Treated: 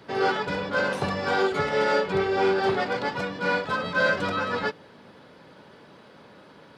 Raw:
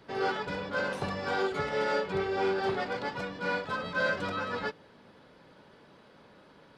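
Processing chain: HPF 71 Hz; gain +6.5 dB

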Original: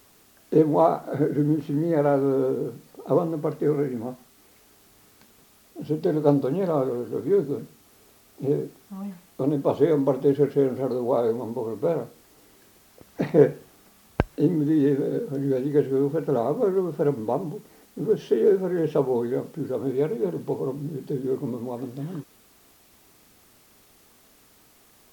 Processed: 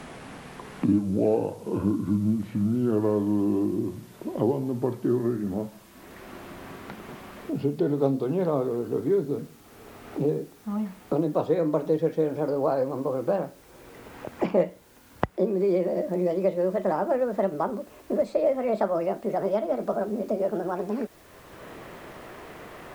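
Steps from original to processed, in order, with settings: speed glide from 61% -> 158%; three-band squash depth 70%; gain -2 dB

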